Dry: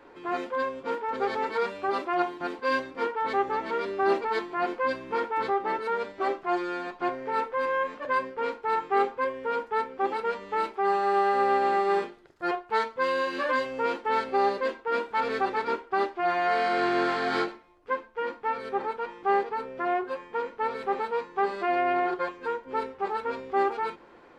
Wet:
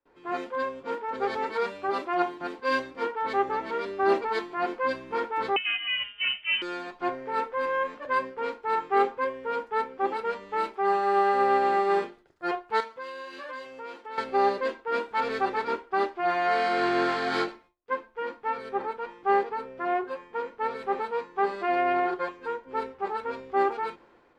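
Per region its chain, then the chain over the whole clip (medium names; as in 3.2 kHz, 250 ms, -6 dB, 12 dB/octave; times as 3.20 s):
5.56–6.62 s: high-pass 370 Hz 6 dB/octave + frequency inversion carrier 3.4 kHz
12.80–14.18 s: bass shelf 250 Hz -9 dB + compression 2:1, threshold -37 dBFS
whole clip: gate with hold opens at -43 dBFS; three bands expanded up and down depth 40%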